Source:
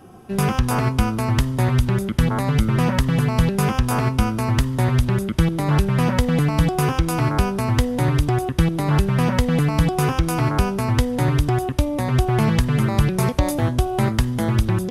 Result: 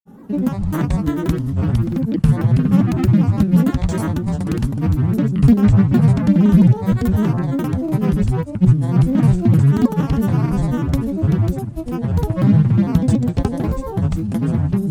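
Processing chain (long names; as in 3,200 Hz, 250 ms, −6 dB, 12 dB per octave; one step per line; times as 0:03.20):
drawn EQ curve 110 Hz 0 dB, 160 Hz +13 dB, 360 Hz +1 dB, 2,800 Hz −6 dB, 11,000 Hz −1 dB
granular cloud, grains 20 per second, pitch spread up and down by 7 semitones
level −2 dB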